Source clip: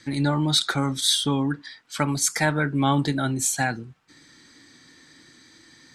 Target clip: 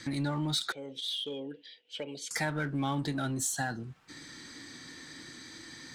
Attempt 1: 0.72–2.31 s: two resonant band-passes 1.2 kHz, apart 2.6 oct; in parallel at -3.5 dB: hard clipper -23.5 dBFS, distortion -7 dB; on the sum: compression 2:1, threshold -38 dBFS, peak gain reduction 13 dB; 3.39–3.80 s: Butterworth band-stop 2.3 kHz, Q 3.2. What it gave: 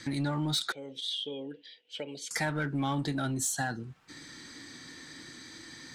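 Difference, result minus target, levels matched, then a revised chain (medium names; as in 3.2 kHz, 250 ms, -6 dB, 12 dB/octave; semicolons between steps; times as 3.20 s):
hard clipper: distortion -5 dB
0.72–2.31 s: two resonant band-passes 1.2 kHz, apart 2.6 oct; in parallel at -3.5 dB: hard clipper -33 dBFS, distortion -2 dB; on the sum: compression 2:1, threshold -38 dBFS, peak gain reduction 12.5 dB; 3.39–3.80 s: Butterworth band-stop 2.3 kHz, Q 3.2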